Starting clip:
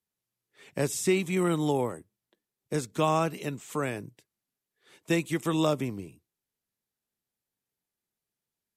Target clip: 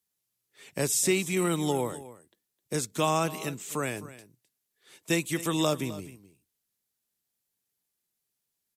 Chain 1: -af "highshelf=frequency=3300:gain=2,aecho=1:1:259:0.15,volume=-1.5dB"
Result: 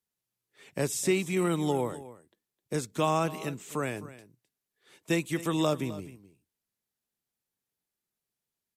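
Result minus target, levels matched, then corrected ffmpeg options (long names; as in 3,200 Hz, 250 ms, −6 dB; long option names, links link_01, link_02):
8,000 Hz band −5.5 dB
-af "highshelf=frequency=3300:gain=10,aecho=1:1:259:0.15,volume=-1.5dB"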